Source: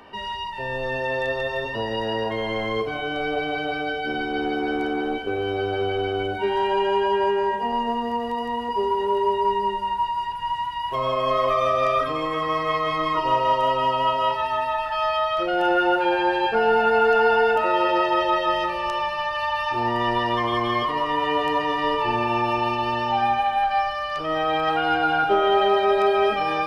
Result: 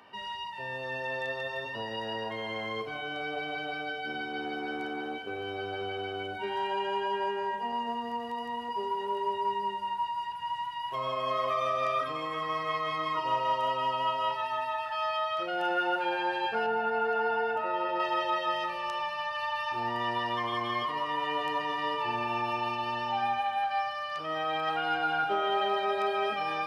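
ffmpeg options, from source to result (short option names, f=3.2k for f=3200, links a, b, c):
-filter_complex "[0:a]asettb=1/sr,asplit=3[a][b][c];[a]atrim=end=16.664[d];[b]atrim=start=16.66:end=18,asetpts=PTS-STARTPTS,afade=t=in:d=0.004:c=qsin,afade=t=out:st=1.336:d=0.004:c=qsin,highshelf=f=2.4k:g=-11[e];[c]atrim=start=17.996[f];[d][e]acrossfade=d=0.004:c1=hsin:c2=qsin[g];[g][f]acrossfade=d=0.004:c1=qsin:c2=hsin,highpass=130,equalizer=f=360:w=0.82:g=-6,volume=-6.5dB"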